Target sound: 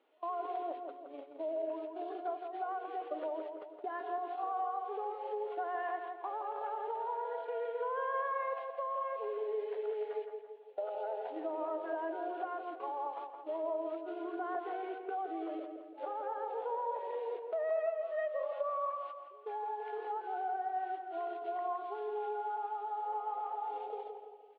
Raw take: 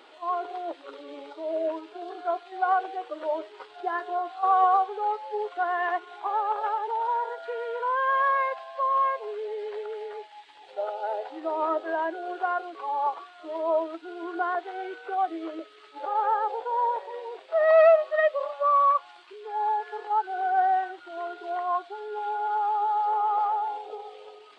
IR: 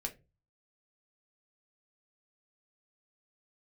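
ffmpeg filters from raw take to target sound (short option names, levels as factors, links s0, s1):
-filter_complex "[0:a]agate=range=0.126:threshold=0.0112:ratio=16:detection=peak,equalizer=f=1700:t=o:w=2.4:g=-10.5,asplit=2[s0][s1];[s1]alimiter=level_in=3.35:limit=0.0631:level=0:latency=1,volume=0.299,volume=0.891[s2];[s0][s2]amix=inputs=2:normalize=0,acompressor=threshold=0.0224:ratio=6,highpass=260,equalizer=f=360:t=q:w=4:g=-6,equalizer=f=840:t=q:w=4:g=-4,equalizer=f=1300:t=q:w=4:g=-3,lowpass=f=2800:w=0.5412,lowpass=f=2800:w=1.3066,asplit=2[s3][s4];[s4]adelay=168,lowpass=f=1600:p=1,volume=0.562,asplit=2[s5][s6];[s6]adelay=168,lowpass=f=1600:p=1,volume=0.53,asplit=2[s7][s8];[s8]adelay=168,lowpass=f=1600:p=1,volume=0.53,asplit=2[s9][s10];[s10]adelay=168,lowpass=f=1600:p=1,volume=0.53,asplit=2[s11][s12];[s12]adelay=168,lowpass=f=1600:p=1,volume=0.53,asplit=2[s13][s14];[s14]adelay=168,lowpass=f=1600:p=1,volume=0.53,asplit=2[s15][s16];[s16]adelay=168,lowpass=f=1600:p=1,volume=0.53[s17];[s5][s7][s9][s11][s13][s15][s17]amix=inputs=7:normalize=0[s18];[s3][s18]amix=inputs=2:normalize=0"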